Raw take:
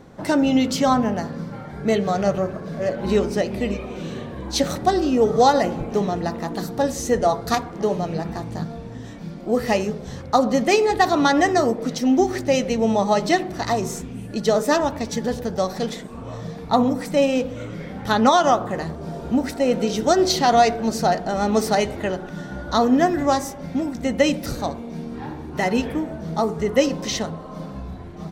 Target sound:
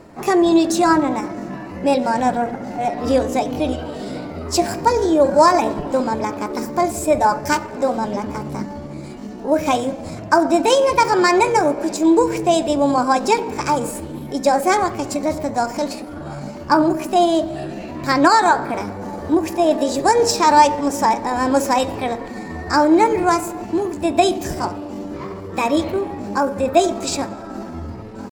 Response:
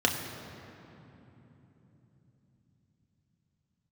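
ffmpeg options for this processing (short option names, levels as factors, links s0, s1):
-filter_complex "[0:a]asplit=2[s0][s1];[1:a]atrim=start_sample=2205,highshelf=f=11000:g=6.5[s2];[s1][s2]afir=irnorm=-1:irlink=0,volume=0.0596[s3];[s0][s3]amix=inputs=2:normalize=0,asetrate=55563,aresample=44100,atempo=0.793701,volume=1.19"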